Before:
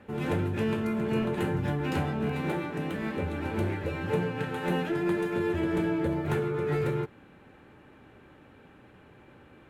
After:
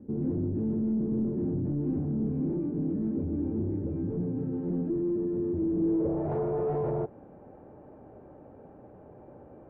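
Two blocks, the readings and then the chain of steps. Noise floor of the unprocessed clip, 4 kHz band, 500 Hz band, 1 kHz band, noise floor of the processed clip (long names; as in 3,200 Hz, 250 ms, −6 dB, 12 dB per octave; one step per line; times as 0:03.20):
−55 dBFS, below −35 dB, −1.5 dB, −8.0 dB, −51 dBFS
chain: hard clipping −32 dBFS, distortion −7 dB
low-pass filter sweep 290 Hz → 660 Hz, 0:05.76–0:06.26
level +2 dB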